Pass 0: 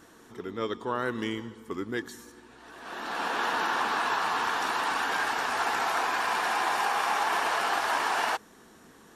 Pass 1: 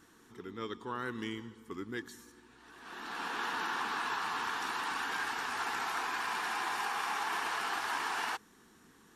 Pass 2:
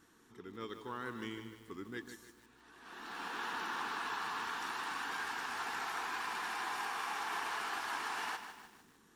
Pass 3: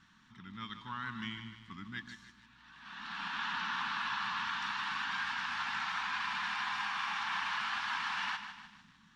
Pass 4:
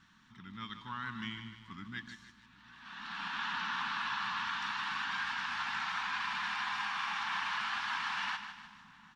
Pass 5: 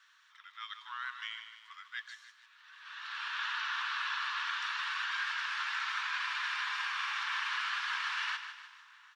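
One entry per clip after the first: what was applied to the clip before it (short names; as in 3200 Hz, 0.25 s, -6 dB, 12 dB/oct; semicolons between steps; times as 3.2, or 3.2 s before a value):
bell 600 Hz -11.5 dB 0.58 oct; gain -6 dB
lo-fi delay 0.152 s, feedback 55%, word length 9-bit, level -9 dB; gain -4.5 dB
EQ curve 100 Hz 0 dB, 200 Hz +4 dB, 430 Hz -28 dB, 950 Hz -2 dB, 3500 Hz +3 dB, 6000 Hz -6 dB, 13000 Hz -29 dB; gain +4 dB
outdoor echo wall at 130 m, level -21 dB
inverse Chebyshev high-pass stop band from 440 Hz, stop band 50 dB; gain +2 dB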